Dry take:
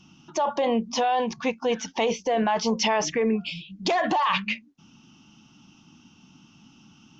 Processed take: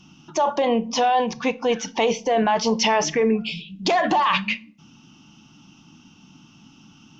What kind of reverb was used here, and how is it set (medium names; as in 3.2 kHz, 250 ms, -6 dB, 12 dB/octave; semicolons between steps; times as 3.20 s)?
simulated room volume 500 m³, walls furnished, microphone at 0.38 m; trim +3.5 dB